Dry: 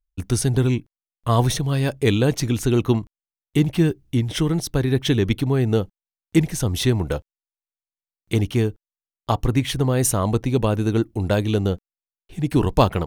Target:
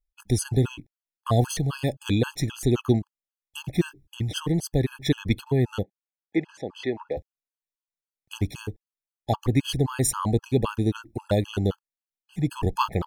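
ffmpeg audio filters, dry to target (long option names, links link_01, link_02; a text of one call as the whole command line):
ffmpeg -i in.wav -filter_complex "[0:a]asplit=3[link_01][link_02][link_03];[link_01]afade=type=out:start_time=5.82:duration=0.02[link_04];[link_02]highpass=380,lowpass=2300,afade=type=in:start_time=5.82:duration=0.02,afade=type=out:start_time=7.16:duration=0.02[link_05];[link_03]afade=type=in:start_time=7.16:duration=0.02[link_06];[link_04][link_05][link_06]amix=inputs=3:normalize=0,afftfilt=real='re*gt(sin(2*PI*3.8*pts/sr)*(1-2*mod(floor(b*sr/1024/840),2)),0)':imag='im*gt(sin(2*PI*3.8*pts/sr)*(1-2*mod(floor(b*sr/1024/840),2)),0)':win_size=1024:overlap=0.75,volume=-1.5dB" out.wav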